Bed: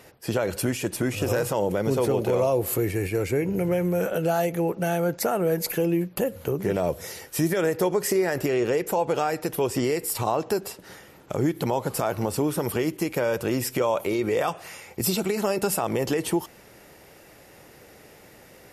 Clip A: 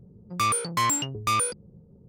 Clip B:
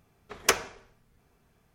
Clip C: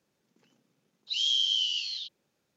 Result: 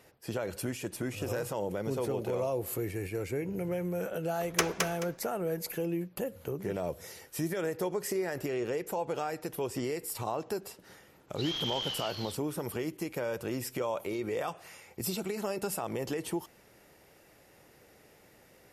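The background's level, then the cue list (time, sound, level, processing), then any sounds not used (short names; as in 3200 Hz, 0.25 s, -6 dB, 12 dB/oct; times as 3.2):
bed -9.5 dB
4.1 add B -5 dB + feedback echo 0.215 s, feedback 24%, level -3.5 dB
10.28 add C -8.5 dB + CVSD 32 kbps
not used: A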